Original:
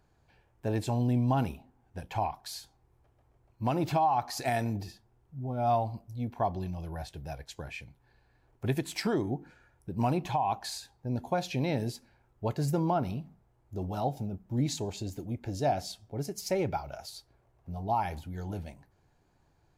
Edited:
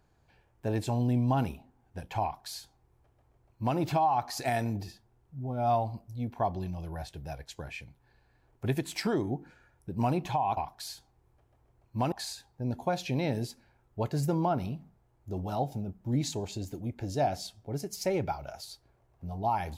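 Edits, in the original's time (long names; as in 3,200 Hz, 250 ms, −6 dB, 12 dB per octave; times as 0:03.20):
0:02.23–0:03.78: duplicate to 0:10.57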